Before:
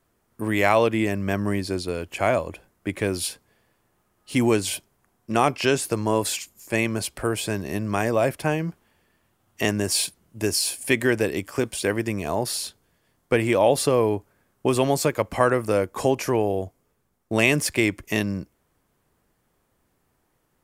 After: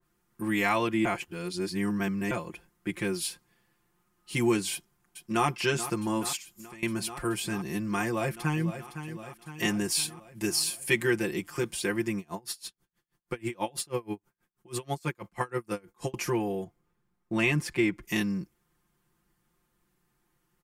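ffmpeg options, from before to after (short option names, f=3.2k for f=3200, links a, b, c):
-filter_complex "[0:a]asplit=2[a][b];[b]afade=t=in:st=4.72:d=0.01,afade=t=out:st=5.46:d=0.01,aecho=0:1:430|860|1290|1720|2150|2580|3010|3440|3870|4300|4730|5160:0.251189|0.21351|0.181484|0.154261|0.131122|0.111454|0.0947357|0.0805253|0.0684465|0.0581795|0.0494526|0.0420347[c];[a][c]amix=inputs=2:normalize=0,asettb=1/sr,asplit=3[d][e][f];[d]atrim=end=6.364[g];[e]atrim=start=6.36:end=6.83,asetpts=PTS-STARTPTS,afade=t=in:d=0.004:c=qsin,afade=t=out:st=0.466:d=0.004:c=qsin,acompressor=threshold=-36dB:ratio=12:attack=3.2:release=140:knee=1:detection=peak[h];[f]atrim=start=6.826[i];[g][h]acrossfade=d=0.004:c1=hsin:c2=qsin[j];[j][i]acrossfade=d=0.004:c1=qsin:c2=hsin,asplit=2[k][l];[l]afade=t=in:st=8.05:d=0.01,afade=t=out:st=8.65:d=0.01,aecho=0:1:510|1020|1530|2040|2550|3060|3570:0.298538|0.179123|0.107474|0.0644843|0.0386906|0.0232143|0.0139286[m];[k][m]amix=inputs=2:normalize=0,asettb=1/sr,asplit=3[n][o][p];[n]atrim=end=12.184[q];[o]atrim=start=12.18:end=16.14,asetpts=PTS-STARTPTS,afade=t=in:d=0.004:c=qsin,afade=t=out:st=3.956:d=0.004:c=qsin,aeval=exprs='val(0)*pow(10,-31*(0.5-0.5*cos(2*PI*6.2*n/s))/20)':c=same[r];[p]atrim=start=16.136[s];[q][r]acrossfade=d=0.004:c1=hsin:c2=qsin[t];[t][s]acrossfade=d=0.004:c1=qsin:c2=hsin,asettb=1/sr,asplit=3[u][v][w];[u]atrim=end=16.644[x];[v]atrim=start=16.64:end=18.02,asetpts=PTS-STARTPTS,afade=t=in:d=0.004:c=qsin,afade=t=out:st=1.376:d=0.004:c=qsin,highshelf=f=4.2k:g=-11.5[y];[w]atrim=start=18.016[z];[x][y]acrossfade=d=0.004:c1=hsin:c2=qsin[aa];[aa][z]acrossfade=d=0.004:c1=qsin:c2=hsin,asplit=3[ab][ac][ad];[ab]atrim=end=1.052[ae];[ac]atrim=start=1.048:end=2.312,asetpts=PTS-STARTPTS,areverse[af];[ad]atrim=start=2.308[ag];[ae][af]acrossfade=d=0.004:c1=hsin:c2=hsin[ah];[ah][ag]acrossfade=d=0.004:c1=hsin:c2=hsin,equalizer=f=590:t=o:w=0.56:g=-12.5,aecho=1:1:5.7:0.94,adynamicequalizer=threshold=0.02:dfrequency=2000:dqfactor=0.7:tfrequency=2000:tqfactor=0.7:attack=5:release=100:ratio=0.375:range=1.5:mode=cutabove:tftype=highshelf,volume=-6dB"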